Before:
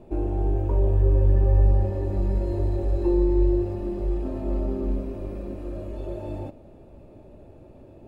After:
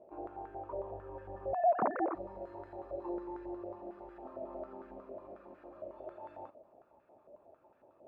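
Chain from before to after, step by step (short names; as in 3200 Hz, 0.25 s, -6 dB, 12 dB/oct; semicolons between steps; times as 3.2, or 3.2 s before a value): 1.53–2.15 sine-wave speech; stepped band-pass 11 Hz 620–1500 Hz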